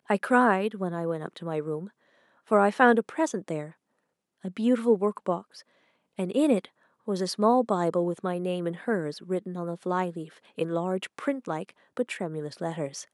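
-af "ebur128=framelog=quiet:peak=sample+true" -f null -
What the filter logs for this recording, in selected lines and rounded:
Integrated loudness:
  I:         -27.6 LUFS
  Threshold: -38.2 LUFS
Loudness range:
  LRA:         6.0 LU
  Threshold: -48.3 LUFS
  LRA low:   -32.1 LUFS
  LRA high:  -26.0 LUFS
Sample peak:
  Peak:       -6.0 dBFS
True peak:
  Peak:       -6.0 dBFS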